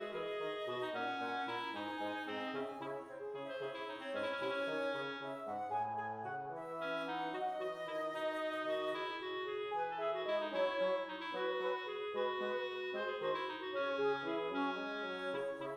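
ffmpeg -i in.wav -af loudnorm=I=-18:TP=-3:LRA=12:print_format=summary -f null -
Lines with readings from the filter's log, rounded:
Input Integrated:    -39.9 LUFS
Input True Peak:     -25.6 dBTP
Input LRA:             2.8 LU
Input Threshold:     -49.9 LUFS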